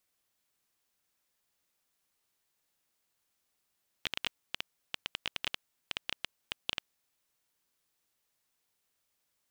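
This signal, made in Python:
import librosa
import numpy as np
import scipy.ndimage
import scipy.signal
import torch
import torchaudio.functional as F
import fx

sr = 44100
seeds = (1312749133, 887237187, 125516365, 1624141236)

y = fx.geiger_clicks(sr, seeds[0], length_s=3.02, per_s=10.0, level_db=-14.5)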